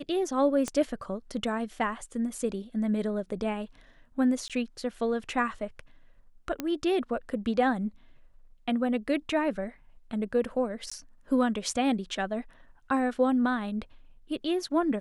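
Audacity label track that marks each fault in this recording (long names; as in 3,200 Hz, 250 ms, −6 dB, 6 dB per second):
0.680000	0.680000	click −18 dBFS
4.480000	4.500000	drop-out 17 ms
6.600000	6.600000	click −16 dBFS
10.900000	10.910000	drop-out 15 ms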